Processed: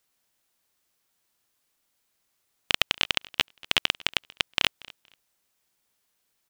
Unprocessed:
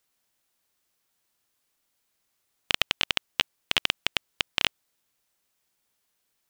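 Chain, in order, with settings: feedback delay 235 ms, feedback 19%, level -23 dB; trim +1 dB

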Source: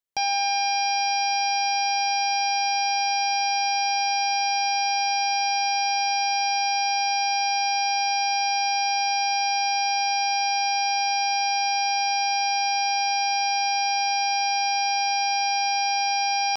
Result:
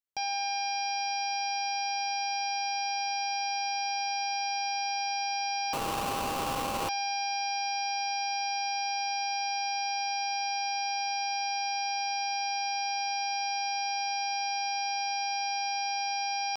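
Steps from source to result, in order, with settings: 5.73–6.89 s: sample-rate reducer 1.9 kHz, jitter 20%; trim -8 dB

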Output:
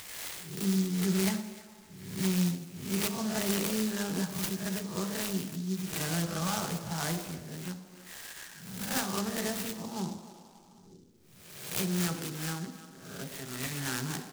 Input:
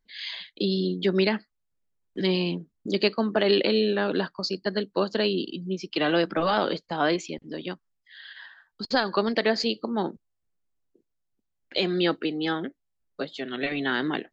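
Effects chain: reverse spectral sustain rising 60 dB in 0.48 s; peaking EQ 440 Hz -14 dB 1.9 oct; speakerphone echo 300 ms, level -19 dB; on a send at -4 dB: reverberation RT60 1.0 s, pre-delay 3 ms; on the sum: upward compressor, threshold -31 dBFS; 9.19–10.07 s: treble shelf 3.8 kHz -8 dB; delay time shaken by noise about 5.2 kHz, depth 0.094 ms; trim -6.5 dB

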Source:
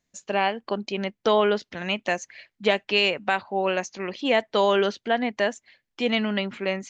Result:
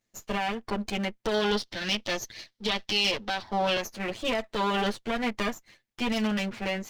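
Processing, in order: comb filter that takes the minimum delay 9.1 ms; peak limiter -18.5 dBFS, peak gain reduction 10 dB; 1.34–3.82 s: high-order bell 4.3 kHz +9 dB 1.1 oct

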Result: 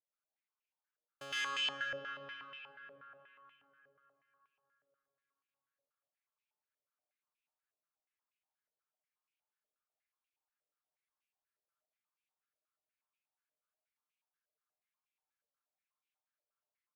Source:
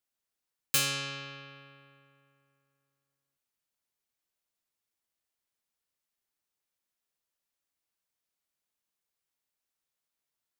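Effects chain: band-stop 1.9 kHz, Q 11; comb 6.6 ms, depth 38%; time stretch by phase-locked vocoder 1.6×; trance gate "xxx.xx..xxxx.x." 186 bpm -60 dB; algorithmic reverb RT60 3.8 s, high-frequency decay 0.6×, pre-delay 65 ms, DRR -6 dB; step-sequenced band-pass 8.3 Hz 550–2500 Hz

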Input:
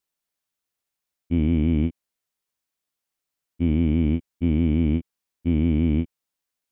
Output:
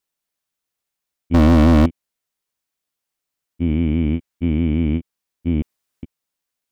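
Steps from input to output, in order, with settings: 1.34–1.86 s: waveshaping leveller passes 5; 3.69–4.98 s: peaking EQ 1.8 kHz +3 dB 1.8 oct; 5.62–6.03 s: room tone; trim +2 dB

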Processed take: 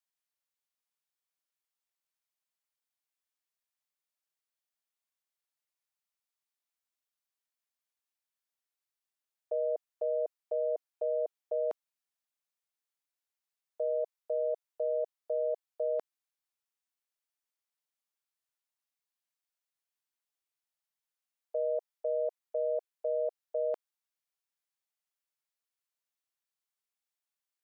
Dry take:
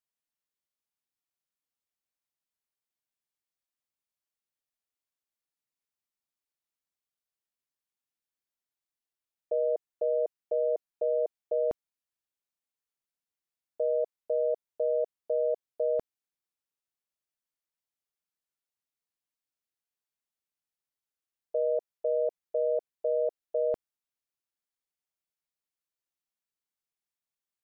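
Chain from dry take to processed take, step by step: high-pass 590 Hz 12 dB/octave

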